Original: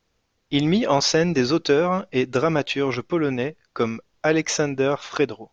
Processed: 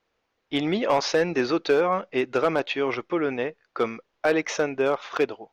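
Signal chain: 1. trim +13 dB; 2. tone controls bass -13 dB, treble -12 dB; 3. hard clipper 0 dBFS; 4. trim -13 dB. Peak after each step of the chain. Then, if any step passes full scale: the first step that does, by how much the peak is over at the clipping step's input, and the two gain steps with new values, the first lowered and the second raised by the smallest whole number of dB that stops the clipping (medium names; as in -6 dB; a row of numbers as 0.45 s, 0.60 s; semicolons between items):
+7.0 dBFS, +5.0 dBFS, 0.0 dBFS, -13.0 dBFS; step 1, 5.0 dB; step 1 +8 dB, step 4 -8 dB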